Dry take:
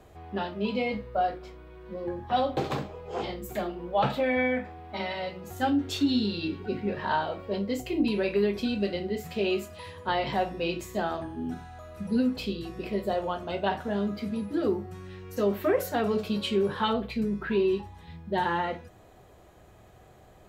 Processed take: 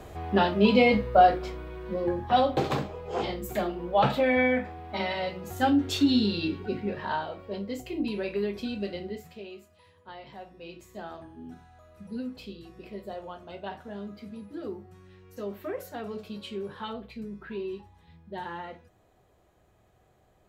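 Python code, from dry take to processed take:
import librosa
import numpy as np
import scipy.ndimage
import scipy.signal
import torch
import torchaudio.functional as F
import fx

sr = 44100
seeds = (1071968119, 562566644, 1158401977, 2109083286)

y = fx.gain(x, sr, db=fx.line((1.56, 9.0), (2.52, 2.5), (6.38, 2.5), (7.3, -4.5), (9.09, -4.5), (9.5, -17.0), (10.38, -17.0), (11.1, -10.0)))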